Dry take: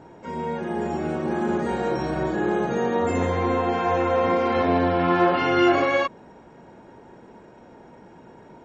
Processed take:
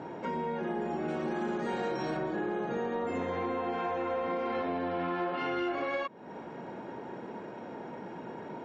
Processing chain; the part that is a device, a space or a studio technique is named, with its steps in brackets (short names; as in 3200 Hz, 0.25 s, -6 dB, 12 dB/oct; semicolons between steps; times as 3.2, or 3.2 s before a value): AM radio (BPF 150–4400 Hz; compressor 5:1, threshold -37 dBFS, peak gain reduction 20 dB; soft clip -27.5 dBFS, distortion -25 dB); 1.08–2.17 high shelf 3300 Hz +10.5 dB; gain +5.5 dB